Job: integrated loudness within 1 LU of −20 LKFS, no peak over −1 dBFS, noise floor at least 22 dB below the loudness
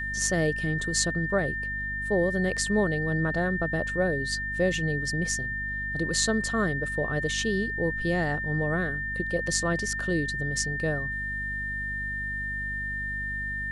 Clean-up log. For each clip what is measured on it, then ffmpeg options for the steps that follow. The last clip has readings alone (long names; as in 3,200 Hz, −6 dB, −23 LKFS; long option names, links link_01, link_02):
mains hum 50 Hz; hum harmonics up to 250 Hz; level of the hum −36 dBFS; interfering tone 1,800 Hz; level of the tone −30 dBFS; integrated loudness −27.5 LKFS; sample peak −7.0 dBFS; target loudness −20.0 LKFS
→ -af "bandreject=frequency=50:width_type=h:width=4,bandreject=frequency=100:width_type=h:width=4,bandreject=frequency=150:width_type=h:width=4,bandreject=frequency=200:width_type=h:width=4,bandreject=frequency=250:width_type=h:width=4"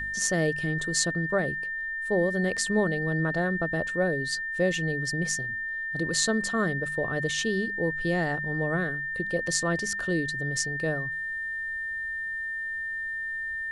mains hum none found; interfering tone 1,800 Hz; level of the tone −30 dBFS
→ -af "bandreject=frequency=1800:width=30"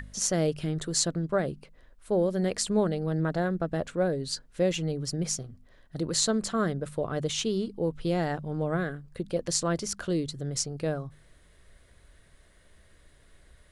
interfering tone none found; integrated loudness −29.5 LKFS; sample peak −7.0 dBFS; target loudness −20.0 LKFS
→ -af "volume=9.5dB,alimiter=limit=-1dB:level=0:latency=1"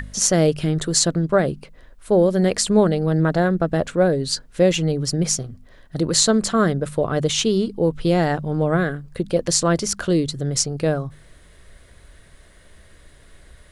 integrated loudness −20.0 LKFS; sample peak −1.0 dBFS; background noise floor −49 dBFS